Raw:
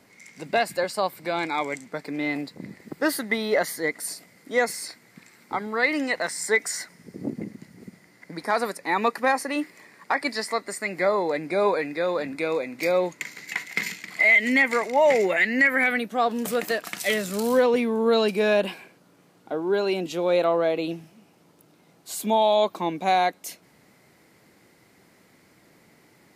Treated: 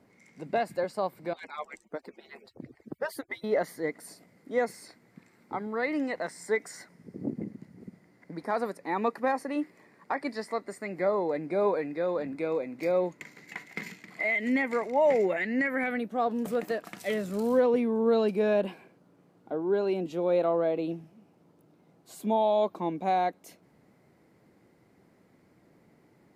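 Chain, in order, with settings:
0:01.33–0:03.44: harmonic-percussive split with one part muted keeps percussive
tilt shelving filter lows +7 dB, about 1,400 Hz
level −9 dB

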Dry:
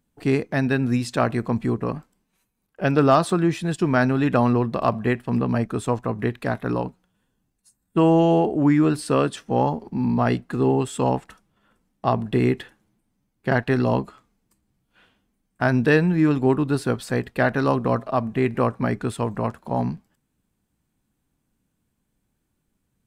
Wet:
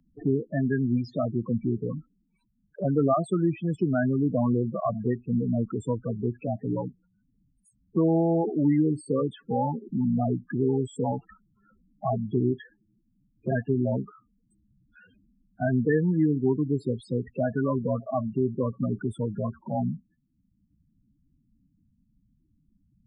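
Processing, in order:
spectral peaks only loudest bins 8
multiband upward and downward compressor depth 40%
level −3.5 dB

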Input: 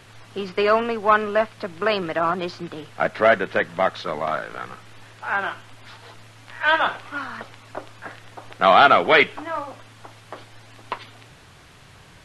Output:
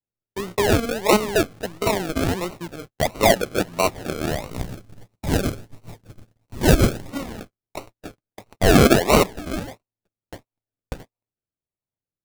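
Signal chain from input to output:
sample-and-hold swept by an LFO 37×, swing 60% 1.5 Hz
0:04.51–0:07.10: bass and treble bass +7 dB, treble +4 dB
noise gate −36 dBFS, range −49 dB

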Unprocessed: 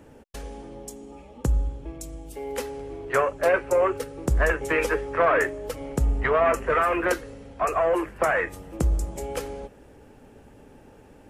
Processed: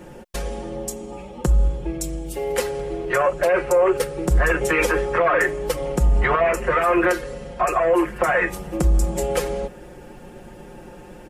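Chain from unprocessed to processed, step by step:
0:06.35–0:08.42: downward compressor 2.5 to 1, threshold −26 dBFS, peak gain reduction 6.5 dB
comb filter 5.6 ms, depth 94%
brickwall limiter −17.5 dBFS, peak gain reduction 12 dB
level +7.5 dB

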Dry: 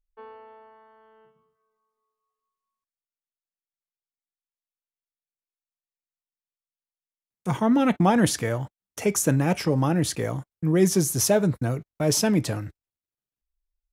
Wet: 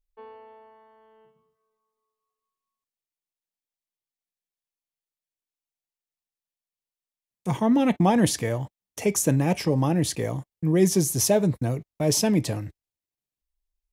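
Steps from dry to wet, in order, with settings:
parametric band 1,400 Hz −10.5 dB 0.37 octaves

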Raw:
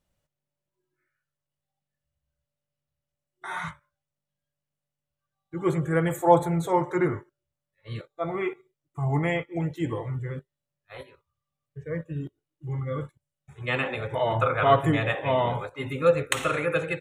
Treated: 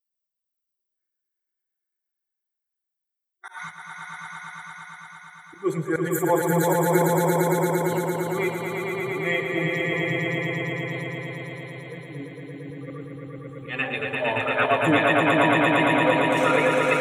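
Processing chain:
spectral dynamics exaggerated over time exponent 1.5
high-pass filter 250 Hz 12 dB per octave
volume swells 215 ms
in parallel at −2.5 dB: brickwall limiter −24 dBFS, peak gain reduction 8.5 dB
on the sum: high-shelf EQ 4,500 Hz +6 dB
echo that builds up and dies away 114 ms, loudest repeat 5, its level −3.5 dB
level +3 dB

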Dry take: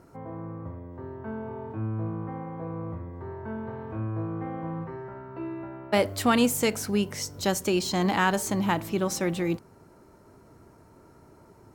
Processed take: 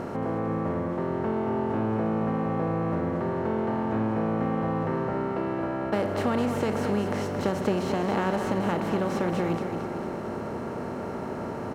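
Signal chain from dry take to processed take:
compressor on every frequency bin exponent 0.4
low-pass filter 1,000 Hz 6 dB per octave
downward compressor, threshold −19 dBFS, peak gain reduction 4.5 dB
on a send: repeating echo 224 ms, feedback 55%, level −8 dB
on the sum: level −3 dB

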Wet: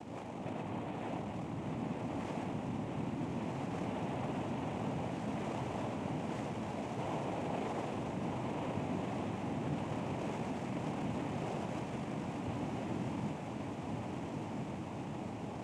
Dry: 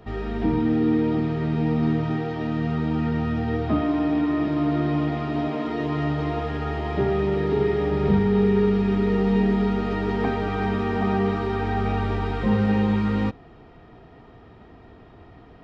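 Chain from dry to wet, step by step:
running median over 41 samples
reversed playback
downward compressor, threshold −33 dBFS, peak gain reduction 16 dB
reversed playback
soft clipping −39 dBFS, distortion −9 dB
brickwall limiter −44.5 dBFS, peak gain reduction 5.5 dB
cochlear-implant simulation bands 4
on a send: feedback delay with all-pass diffusion 1,410 ms, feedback 64%, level −3.5 dB
on the sum: level +7 dB

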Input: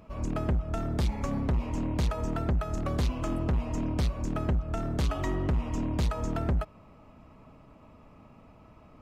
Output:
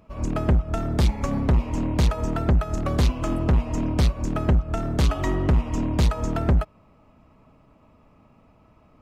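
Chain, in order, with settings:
expander for the loud parts 1.5 to 1, over −45 dBFS
level +8.5 dB

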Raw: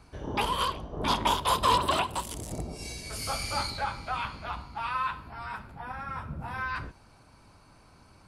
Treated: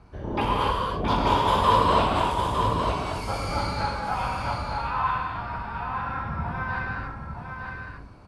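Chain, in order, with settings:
low-pass filter 1,400 Hz 6 dB per octave
single-tap delay 907 ms −6 dB
reverb whose tail is shaped and stops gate 320 ms flat, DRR −3 dB
level +2.5 dB

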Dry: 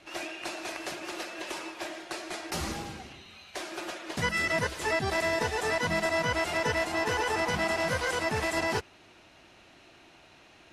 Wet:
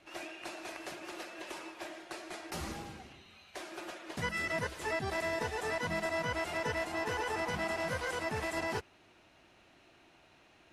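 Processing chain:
parametric band 5,200 Hz −3 dB 1.7 octaves
level −6 dB

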